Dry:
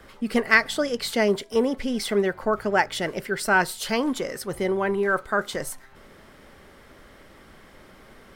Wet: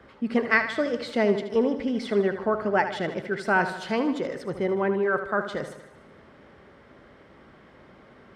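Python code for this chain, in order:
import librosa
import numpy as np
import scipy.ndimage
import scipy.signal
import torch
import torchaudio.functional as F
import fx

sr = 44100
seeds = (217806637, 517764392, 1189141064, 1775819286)

y = scipy.signal.sosfilt(scipy.signal.butter(2, 75.0, 'highpass', fs=sr, output='sos'), x)
y = fx.spacing_loss(y, sr, db_at_10k=22)
y = fx.echo_feedback(y, sr, ms=77, feedback_pct=57, wet_db=-10.5)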